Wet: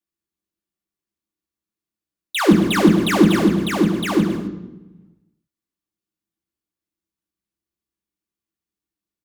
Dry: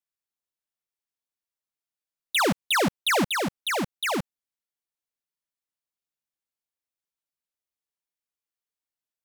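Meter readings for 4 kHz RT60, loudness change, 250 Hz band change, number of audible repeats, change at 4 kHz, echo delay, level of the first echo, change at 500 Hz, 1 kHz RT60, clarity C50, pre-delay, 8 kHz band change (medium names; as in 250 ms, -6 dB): 0.75 s, +8.0 dB, +15.5 dB, 2, +1.0 dB, 167 ms, -11.5 dB, +8.5 dB, 0.90 s, 6.5 dB, 3 ms, +0.5 dB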